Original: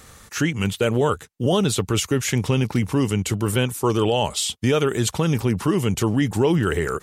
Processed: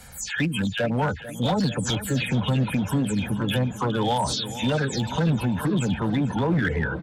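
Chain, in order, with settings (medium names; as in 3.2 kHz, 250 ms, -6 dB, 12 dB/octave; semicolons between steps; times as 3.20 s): delay that grows with frequency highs early, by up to 191 ms; de-esser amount 55%; spectral gate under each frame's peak -25 dB strong; comb 1.3 ms, depth 77%; in parallel at +3 dB: peak limiter -14.5 dBFS, peak gain reduction 6.5 dB; on the sum: one-sided clip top -9.5 dBFS, bottom -7.5 dBFS; formant shift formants +2 st; on a send: filtered feedback delay 444 ms, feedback 74%, low-pass 4.9 kHz, level -14 dB; on the sum: trim -8.5 dB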